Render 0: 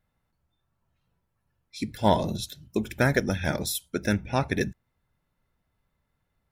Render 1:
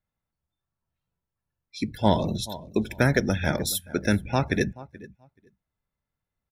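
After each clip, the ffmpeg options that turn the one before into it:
-filter_complex "[0:a]aecho=1:1:429|858:0.112|0.0292,afftdn=nr=13:nf=-45,acrossover=split=420|3000[a][b][c];[b]acompressor=threshold=-25dB:ratio=2.5[d];[a][d][c]amix=inputs=3:normalize=0,volume=2.5dB"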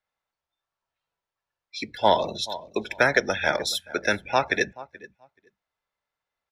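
-filter_complex "[0:a]acrossover=split=450 6300:gain=0.1 1 0.112[a][b][c];[a][b][c]amix=inputs=3:normalize=0,volume=6dB"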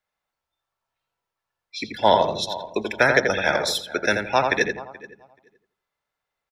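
-filter_complex "[0:a]asplit=2[a][b];[b]adelay=84,lowpass=f=2k:p=1,volume=-4dB,asplit=2[c][d];[d]adelay=84,lowpass=f=2k:p=1,volume=0.3,asplit=2[e][f];[f]adelay=84,lowpass=f=2k:p=1,volume=0.3,asplit=2[g][h];[h]adelay=84,lowpass=f=2k:p=1,volume=0.3[i];[a][c][e][g][i]amix=inputs=5:normalize=0,volume=2dB"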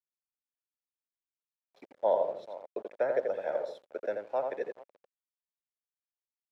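-af "aeval=exprs='val(0)*gte(abs(val(0)),0.0355)':c=same,bandpass=f=550:t=q:w=3.6:csg=0,volume=-5dB"

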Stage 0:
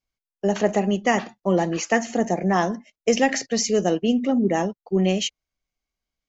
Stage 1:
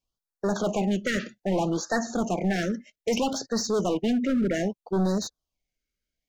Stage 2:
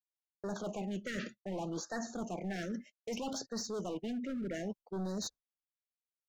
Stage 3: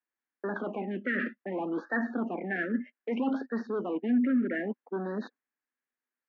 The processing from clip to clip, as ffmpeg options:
-filter_complex "[0:a]volume=21dB,asoftclip=hard,volume=-21dB,acrossover=split=5500[a][b];[b]acompressor=threshold=-41dB:ratio=4:attack=1:release=60[c];[a][c]amix=inputs=2:normalize=0,afftfilt=real='re*(1-between(b*sr/1024,850*pow(2700/850,0.5+0.5*sin(2*PI*0.63*pts/sr))/1.41,850*pow(2700/850,0.5+0.5*sin(2*PI*0.63*pts/sr))*1.41))':imag='im*(1-between(b*sr/1024,850*pow(2700/850,0.5+0.5*sin(2*PI*0.63*pts/sr))/1.41,850*pow(2700/850,0.5+0.5*sin(2*PI*0.63*pts/sr))*1.41))':win_size=1024:overlap=0.75"
-af "agate=range=-33dB:threshold=-38dB:ratio=3:detection=peak,areverse,acompressor=threshold=-34dB:ratio=6,areverse,volume=-3dB"
-af "highpass=f=240:w=0.5412,highpass=f=240:w=1.3066,equalizer=f=250:t=q:w=4:g=10,equalizer=f=630:t=q:w=4:g=-5,equalizer=f=1.7k:t=q:w=4:g=9,lowpass=f=2.3k:w=0.5412,lowpass=f=2.3k:w=1.3066,volume=7dB"

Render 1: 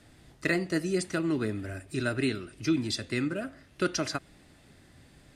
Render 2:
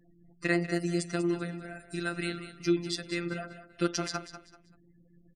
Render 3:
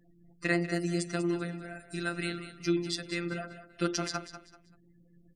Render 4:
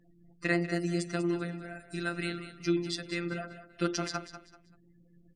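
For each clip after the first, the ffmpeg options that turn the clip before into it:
-af "afftfilt=real='re*gte(hypot(re,im),0.00355)':imag='im*gte(hypot(re,im),0.00355)':win_size=1024:overlap=0.75,afftfilt=real='hypot(re,im)*cos(PI*b)':imag='0':win_size=1024:overlap=0.75,aecho=1:1:193|386|579:0.251|0.0754|0.0226,volume=1.5dB"
-af "bandreject=f=50:t=h:w=6,bandreject=f=100:t=h:w=6,bandreject=f=150:t=h:w=6,bandreject=f=200:t=h:w=6,bandreject=f=250:t=h:w=6,bandreject=f=300:t=h:w=6,bandreject=f=350:t=h:w=6,bandreject=f=400:t=h:w=6,bandreject=f=450:t=h:w=6,bandreject=f=500:t=h:w=6"
-af "highshelf=f=8.2k:g=-7"

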